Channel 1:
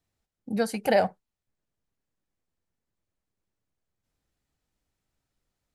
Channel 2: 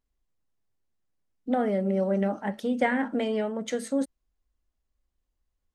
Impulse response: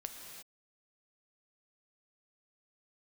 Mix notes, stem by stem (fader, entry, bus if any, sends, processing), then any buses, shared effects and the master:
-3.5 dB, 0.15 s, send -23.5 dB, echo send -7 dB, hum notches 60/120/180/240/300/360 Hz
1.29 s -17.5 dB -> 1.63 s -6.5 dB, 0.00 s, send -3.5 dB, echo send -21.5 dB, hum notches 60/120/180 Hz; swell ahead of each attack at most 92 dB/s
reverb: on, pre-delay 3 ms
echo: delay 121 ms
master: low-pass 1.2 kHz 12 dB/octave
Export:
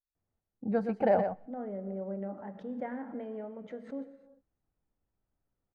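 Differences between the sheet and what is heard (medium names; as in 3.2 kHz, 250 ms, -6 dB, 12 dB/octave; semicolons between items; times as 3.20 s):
stem 1: missing hum notches 60/120/180/240/300/360 Hz; stem 2 -17.5 dB -> -26.5 dB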